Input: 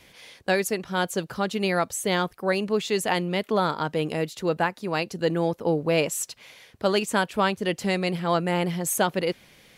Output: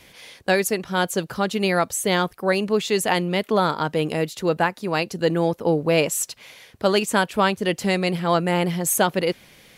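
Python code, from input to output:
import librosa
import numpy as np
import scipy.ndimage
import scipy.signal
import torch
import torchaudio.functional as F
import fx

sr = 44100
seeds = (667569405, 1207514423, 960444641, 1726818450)

y = fx.peak_eq(x, sr, hz=13000.0, db=2.5, octaves=0.98)
y = y * 10.0 ** (3.5 / 20.0)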